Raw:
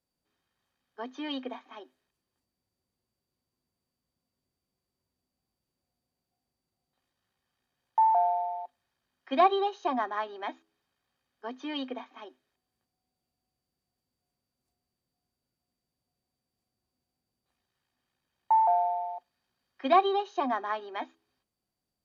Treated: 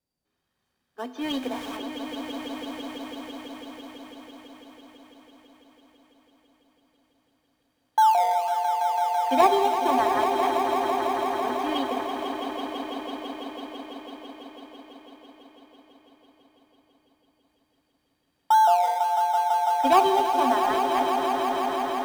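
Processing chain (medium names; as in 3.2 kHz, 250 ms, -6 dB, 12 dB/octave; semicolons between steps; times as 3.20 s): 1.21–1.77 s: jump at every zero crossing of -40 dBFS; wow and flutter 25 cents; in parallel at -12 dB: decimation with a swept rate 25×, swing 60% 1.6 Hz; on the sum: Schroeder reverb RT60 1.6 s, combs from 32 ms, DRR 13.5 dB; level rider gain up to 4 dB; on a send: echo with a slow build-up 166 ms, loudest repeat 5, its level -8.5 dB; on the sum: trim -1 dB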